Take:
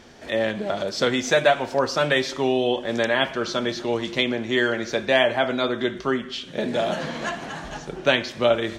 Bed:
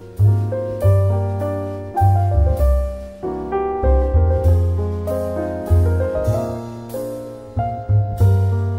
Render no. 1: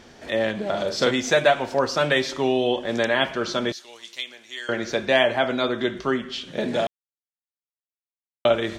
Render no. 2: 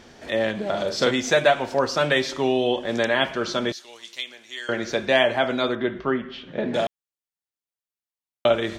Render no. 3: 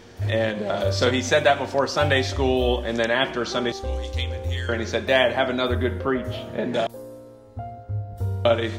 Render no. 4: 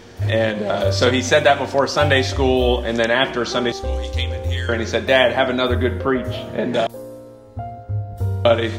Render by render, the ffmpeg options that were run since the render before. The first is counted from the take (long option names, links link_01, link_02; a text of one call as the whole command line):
ffmpeg -i in.wav -filter_complex "[0:a]asettb=1/sr,asplit=3[link_01][link_02][link_03];[link_01]atrim=end=0.694[link_04];[link_02]atrim=start=0.69:end=1.11,asetpts=PTS-STARTPTS,afade=type=in:duration=0.004:curve=qsin,afade=type=out:start_time=0.416:duration=0.004:curve=qsin,asplit=2[link_05][link_06];[link_06]adelay=43,volume=-6dB[link_07];[link_05][link_07]amix=inputs=2:normalize=0,atrim=end_sample=18522[link_08];[link_03]atrim=start=1.106[link_09];[link_04][link_08]acrossfade=duration=0.004:curve1=hsin:curve2=qsin[link_10];[link_10][link_09]acrossfade=duration=0.004:curve1=qsin:curve2=hsin,asettb=1/sr,asplit=3[link_11][link_12][link_13];[link_11]atrim=end=3.724[link_14];[link_12]atrim=start=3.72:end=4.69,asetpts=PTS-STARTPTS,afade=type=in:duration=0.004:curve=qsin,afade=type=out:start_time=0.966:duration=0.004:curve=qsin,aderivative[link_15];[link_13]atrim=start=4.686[link_16];[link_14][link_15]acrossfade=duration=0.004:curve1=hsin:curve2=qsin[link_17];[link_17][link_16]acrossfade=duration=0.004:curve1=qsin:curve2=hsin,asplit=3[link_18][link_19][link_20];[link_18]atrim=end=6.87,asetpts=PTS-STARTPTS,afade=type=out:start_time=6.866:duration=0.004:curve=hsin[link_21];[link_19]atrim=start=6.87:end=8.45,asetpts=PTS-STARTPTS,volume=0[link_22];[link_20]atrim=start=8.45,asetpts=PTS-STARTPTS,afade=type=in:duration=0.004:curve=hsin[link_23];[link_21][link_22][link_23]concat=n=3:v=0:a=1" out.wav
ffmpeg -i in.wav -filter_complex "[0:a]asettb=1/sr,asplit=3[link_01][link_02][link_03];[link_01]atrim=end=5.754[link_04];[link_02]atrim=start=5.75:end=6.74,asetpts=PTS-STARTPTS,afade=type=in:duration=0.004:curve=qsin,afade=type=out:start_time=0.986:duration=0.004:curve=qsin,lowpass=2300[link_05];[link_03]atrim=start=6.736[link_06];[link_04][link_05]acrossfade=duration=0.004:curve1=hsin:curve2=qsin[link_07];[link_07][link_06]acrossfade=duration=0.004:curve1=qsin:curve2=hsin" out.wav
ffmpeg -i in.wav -i bed.wav -filter_complex "[1:a]volume=-13dB[link_01];[0:a][link_01]amix=inputs=2:normalize=0" out.wav
ffmpeg -i in.wav -af "volume=4.5dB,alimiter=limit=-1dB:level=0:latency=1" out.wav